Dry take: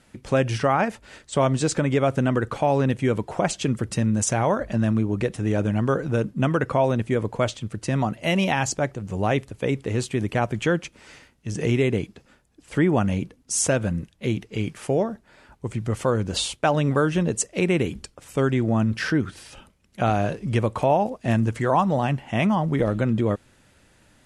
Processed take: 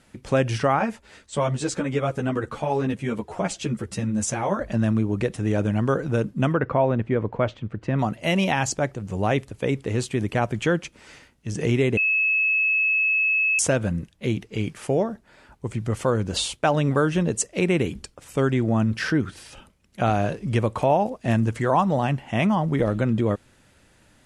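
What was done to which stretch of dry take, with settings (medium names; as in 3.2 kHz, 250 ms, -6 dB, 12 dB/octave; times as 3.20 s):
0.79–4.59 s: three-phase chorus
6.53–7.99 s: low-pass 2.2 kHz
11.97–13.59 s: bleep 2.59 kHz -18 dBFS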